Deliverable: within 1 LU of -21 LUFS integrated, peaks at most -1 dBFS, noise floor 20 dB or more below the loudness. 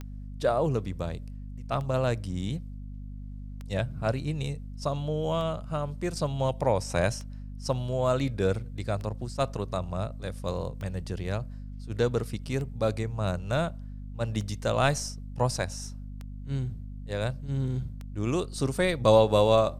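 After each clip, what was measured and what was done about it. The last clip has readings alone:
clicks 11; hum 50 Hz; harmonics up to 250 Hz; hum level -37 dBFS; loudness -29.5 LUFS; peak -7.0 dBFS; loudness target -21.0 LUFS
-> de-click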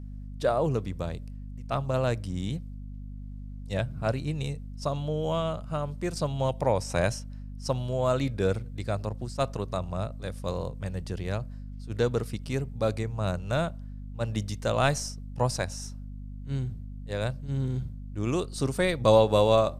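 clicks 0; hum 50 Hz; harmonics up to 250 Hz; hum level -37 dBFS
-> de-hum 50 Hz, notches 5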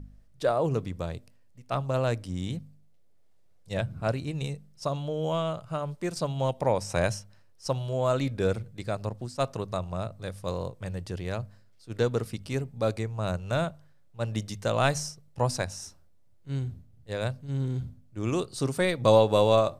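hum none; loudness -29.5 LUFS; peak -7.0 dBFS; loudness target -21.0 LUFS
-> gain +8.5 dB; limiter -1 dBFS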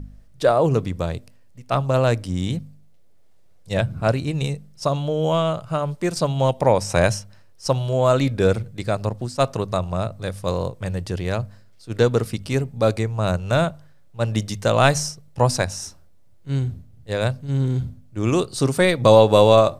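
loudness -21.5 LUFS; peak -1.0 dBFS; noise floor -48 dBFS

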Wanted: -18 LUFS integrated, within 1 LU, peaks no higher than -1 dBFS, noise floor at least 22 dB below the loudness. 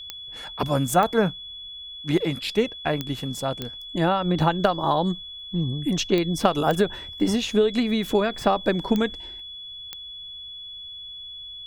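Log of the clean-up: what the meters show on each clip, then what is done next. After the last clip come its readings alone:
clicks 8; steady tone 3400 Hz; tone level -36 dBFS; loudness -24.0 LUFS; peak -4.0 dBFS; loudness target -18.0 LUFS
-> de-click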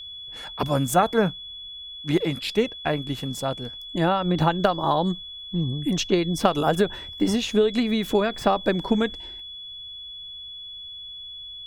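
clicks 0; steady tone 3400 Hz; tone level -36 dBFS
-> notch 3400 Hz, Q 30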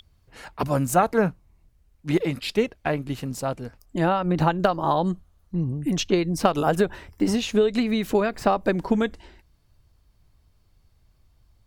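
steady tone none; loudness -24.0 LUFS; peak -4.0 dBFS; loudness target -18.0 LUFS
-> gain +6 dB; limiter -1 dBFS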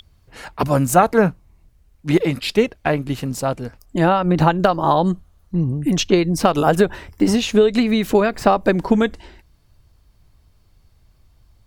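loudness -18.0 LUFS; peak -1.0 dBFS; noise floor -56 dBFS

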